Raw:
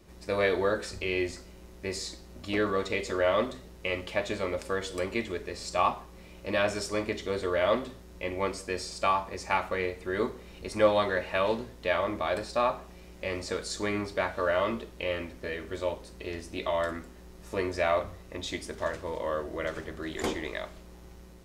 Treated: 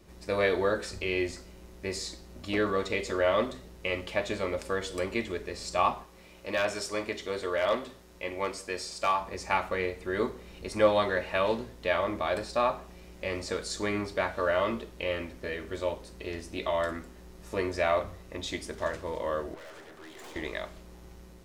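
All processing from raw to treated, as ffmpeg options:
-filter_complex "[0:a]asettb=1/sr,asplit=3[s0][s1][s2];[s0]atrim=end=6.034[s3];[s1]atrim=start=6.03:end=9.21,asetpts=PTS-STARTPTS,afade=t=in:d=0.004:c=qsin,afade=t=out:st=3.176:d=0.004:c=qsin,lowshelf=f=280:g=-8.5,asoftclip=type=hard:threshold=0.112[s4];[s2]atrim=start=9.206[s5];[s3][s4]acrossfade=d=0.004:c1=hsin:c2=qsin[s6];[s6][s5]acrossfade=d=0.004:c1=qsin:c2=hsin,asettb=1/sr,asplit=3[s7][s8][s9];[s7]atrim=end=19.544[s10];[s8]atrim=start=19.54:end=20.36,asetpts=PTS-STARTPTS,afade=t=in:d=0.004:c=qsin,afade=t=out:st=0.816:d=0.004:c=qsin,highpass=f=490:p=1,equalizer=f=870:w=1.6:g=5,aeval=exprs='(tanh(178*val(0)+0.5)-tanh(0.5))/178':c=same[s11];[s9]atrim=start=20.356[s12];[s10][s11]acrossfade=d=0.004:c1=hsin:c2=qsin[s13];[s13][s12]acrossfade=d=0.004:c1=qsin:c2=hsin"

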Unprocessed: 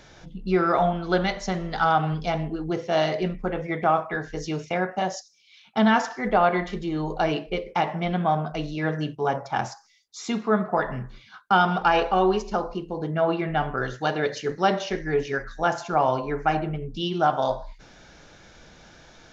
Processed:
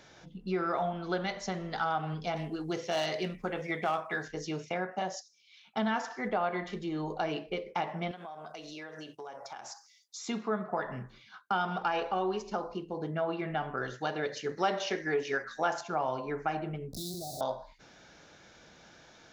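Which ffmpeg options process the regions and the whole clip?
-filter_complex "[0:a]asettb=1/sr,asplit=3[s0][s1][s2];[s0]atrim=end=2.364[s3];[s1]atrim=start=2.36:end=4.28,asetpts=PTS-STARTPTS,afade=t=in:d=0.004:c=qsin,afade=t=out:st=1.916:d=0.004:c=qsin,highshelf=f=2500:g=11.5,volume=4.22,asoftclip=hard,volume=0.237[s4];[s2]atrim=start=4.276[s5];[s3][s4]acrossfade=d=0.004:c1=hsin:c2=qsin[s6];[s6][s5]acrossfade=d=0.004:c1=qsin:c2=hsin,asettb=1/sr,asplit=3[s7][s8][s9];[s7]atrim=end=8.114[s10];[s8]atrim=start=8.11:end=10.27,asetpts=PTS-STARTPTS,afade=t=in:d=0.004:c=qsin,afade=t=out:st=2.156:d=0.004:c=qsin,bass=f=250:g=-15,treble=f=4000:g=8,acompressor=threshold=0.02:ratio=20:attack=3.2:release=140:knee=1:detection=peak[s11];[s9]atrim=start=10.266[s12];[s10][s11]acrossfade=d=0.004:c1=hsin:c2=qsin[s13];[s13][s12]acrossfade=d=0.004:c1=qsin:c2=hsin,asettb=1/sr,asplit=3[s14][s15][s16];[s14]atrim=end=14.574[s17];[s15]atrim=start=14.57:end=15.81,asetpts=PTS-STARTPTS,afade=t=in:d=0.004:c=qsin,afade=t=out:st=1.236:d=0.004:c=qsin,highpass=f=320:p=1,acontrast=69[s18];[s16]atrim=start=15.806[s19];[s17][s18]acrossfade=d=0.004:c1=hsin:c2=qsin[s20];[s20][s19]acrossfade=d=0.004:c1=qsin:c2=hsin,asettb=1/sr,asplit=3[s21][s22][s23];[s21]atrim=end=16.934[s24];[s22]atrim=start=16.93:end=17.41,asetpts=PTS-STARTPTS,afade=t=in:d=0.004:c=qsin,afade=t=out:st=0.476:d=0.004:c=qsin,aeval=exprs='val(0)+0.5*0.0668*sgn(val(0))':c=same,asuperstop=centerf=1700:order=20:qfactor=0.56,acrossover=split=130|3000[s25][s26][s27];[s26]acompressor=threshold=0.0126:ratio=4:attack=3.2:release=140:knee=2.83:detection=peak[s28];[s25][s28][s27]amix=inputs=3:normalize=0[s29];[s23]atrim=start=17.406[s30];[s24][s29]acrossfade=d=0.004:c1=hsin:c2=qsin[s31];[s31][s30]acrossfade=d=0.004:c1=qsin:c2=hsin,highpass=f=150:p=1,acompressor=threshold=0.0501:ratio=2,volume=0.562"

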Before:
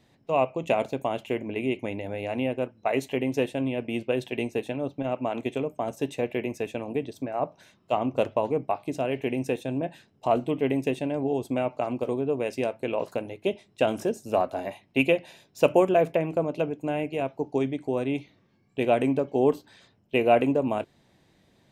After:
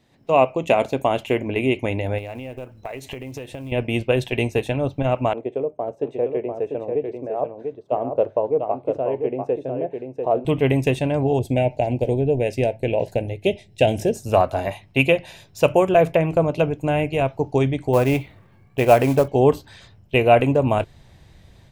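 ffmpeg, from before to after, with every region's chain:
-filter_complex "[0:a]asettb=1/sr,asplit=3[s0][s1][s2];[s0]atrim=end=2.184[s3];[s1]atrim=start=2.18:end=3.72,asetpts=PTS-STARTPTS,afade=t=in:d=0.004:c=qsin,afade=t=out:st=1.536:d=0.004:c=qsin,acrusher=bits=8:mode=log:mix=0:aa=0.000001,acompressor=threshold=0.0141:ratio=8:attack=3.2:release=140:knee=1:detection=peak[s4];[s2]atrim=start=3.716[s5];[s3][s4]acrossfade=d=0.004:c1=hsin:c2=qsin[s6];[s6][s5]acrossfade=d=0.004:c1=qsin:c2=hsin,asettb=1/sr,asplit=3[s7][s8][s9];[s7]atrim=end=5.334[s10];[s8]atrim=start=5.33:end=10.45,asetpts=PTS-STARTPTS,afade=t=in:d=0.004:c=qsin,afade=t=out:st=5.116:d=0.004:c=qsin,bandpass=f=460:t=q:w=1.9,aecho=1:1:694:0.531,atrim=end_sample=225792[s11];[s9]atrim=start=10.446[s12];[s10][s11]acrossfade=d=0.004:c1=hsin:c2=qsin[s13];[s13][s12]acrossfade=d=0.004:c1=qsin:c2=hsin,asettb=1/sr,asplit=3[s14][s15][s16];[s14]atrim=end=11.394[s17];[s15]atrim=start=11.39:end=14.15,asetpts=PTS-STARTPTS,afade=t=in:d=0.004:c=qsin,afade=t=out:st=2.756:d=0.004:c=qsin,asuperstop=centerf=1200:order=4:qfactor=1.2,adynamicequalizer=threshold=0.00447:dfrequency=2100:dqfactor=0.7:tfrequency=2100:tqfactor=0.7:attack=5:release=100:ratio=0.375:range=3:mode=cutabove:tftype=highshelf[s18];[s16]atrim=start=14.146[s19];[s17][s18]acrossfade=d=0.004:c1=hsin:c2=qsin[s20];[s20][s19]acrossfade=d=0.004:c1=qsin:c2=hsin,asettb=1/sr,asplit=3[s21][s22][s23];[s21]atrim=end=17.934[s24];[s22]atrim=start=17.93:end=19.28,asetpts=PTS-STARTPTS,afade=t=in:d=0.004:c=qsin,afade=t=out:st=1.346:d=0.004:c=qsin,lowpass=3100,equalizer=f=950:w=0.42:g=5.5,acrusher=bits=6:mode=log:mix=0:aa=0.000001[s25];[s23]atrim=start=19.276[s26];[s24][s25]acrossfade=d=0.004:c1=hsin:c2=qsin[s27];[s27][s26]acrossfade=d=0.004:c1=qsin:c2=hsin,asubboost=boost=8.5:cutoff=83,dynaudnorm=f=110:g=3:m=2.82"

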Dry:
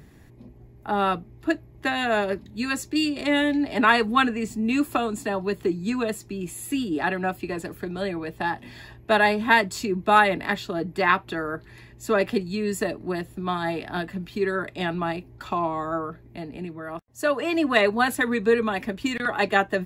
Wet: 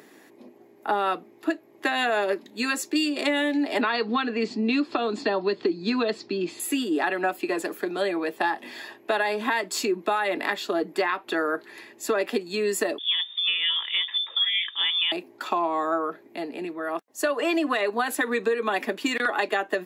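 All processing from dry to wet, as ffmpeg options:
-filter_complex "[0:a]asettb=1/sr,asplit=3[s0][s1][s2];[s0]atrim=end=3.814[s3];[s1]atrim=start=3.81:end=6.6,asetpts=PTS-STARTPTS,afade=t=in:d=0.004:c=qsin,afade=t=out:st=2.786:d=0.004:c=qsin,lowpass=f=4500:t=q:w=4.2,aemphasis=mode=reproduction:type=bsi[s4];[s2]atrim=start=6.596[s5];[s3][s4]acrossfade=d=0.004:c1=hsin:c2=qsin[s6];[s6][s5]acrossfade=d=0.004:c1=qsin:c2=hsin,asettb=1/sr,asplit=3[s7][s8][s9];[s7]atrim=end=12.984[s10];[s8]atrim=start=12.98:end=15.12,asetpts=PTS-STARTPTS,afade=t=in:d=0.004:c=qsin,afade=t=out:st=2.136:d=0.004:c=qsin,highshelf=f=2500:g=-9,lowpass=f=3100:t=q:w=0.5098,lowpass=f=3100:t=q:w=0.6013,lowpass=f=3100:t=q:w=0.9,lowpass=f=3100:t=q:w=2.563,afreqshift=-3700[s11];[s9]atrim=start=15.116[s12];[s10][s11]acrossfade=d=0.004:c1=hsin:c2=qsin[s13];[s13][s12]acrossfade=d=0.004:c1=qsin:c2=hsin,highpass=f=290:w=0.5412,highpass=f=290:w=1.3066,alimiter=limit=0.168:level=0:latency=1:release=215,acompressor=threshold=0.0501:ratio=6,volume=1.88"

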